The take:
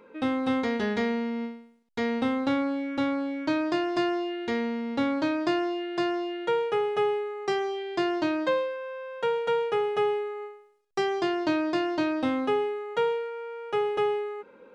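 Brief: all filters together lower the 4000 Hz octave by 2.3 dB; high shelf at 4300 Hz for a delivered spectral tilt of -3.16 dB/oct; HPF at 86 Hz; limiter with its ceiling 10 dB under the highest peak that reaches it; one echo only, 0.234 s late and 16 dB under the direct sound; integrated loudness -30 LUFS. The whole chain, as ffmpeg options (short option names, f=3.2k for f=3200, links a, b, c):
-af "highpass=86,equalizer=f=4k:t=o:g=-5.5,highshelf=f=4.3k:g=4,alimiter=level_in=1dB:limit=-24dB:level=0:latency=1,volume=-1dB,aecho=1:1:234:0.158,volume=2dB"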